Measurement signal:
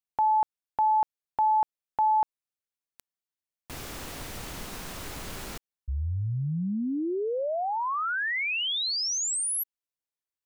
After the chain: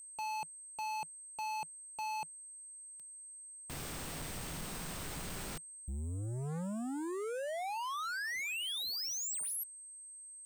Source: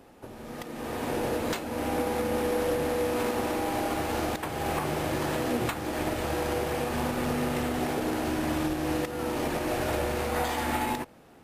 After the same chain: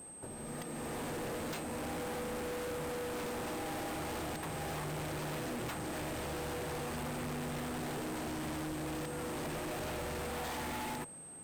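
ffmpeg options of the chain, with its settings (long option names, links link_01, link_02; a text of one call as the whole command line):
ffmpeg -i in.wav -af "aeval=exprs='val(0)+0.00562*sin(2*PI*8300*n/s)':channel_layout=same,equalizer=frequency=160:width_type=o:width=0.4:gain=7.5,volume=34dB,asoftclip=hard,volume=-34dB,volume=-3.5dB" out.wav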